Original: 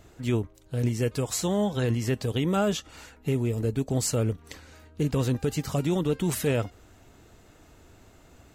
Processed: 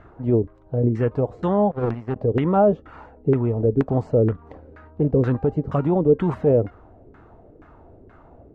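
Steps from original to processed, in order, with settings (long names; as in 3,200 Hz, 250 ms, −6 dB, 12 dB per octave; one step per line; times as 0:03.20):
auto-filter low-pass saw down 2.1 Hz 370–1,600 Hz
0:01.71–0:02.16: power curve on the samples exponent 2
level +4.5 dB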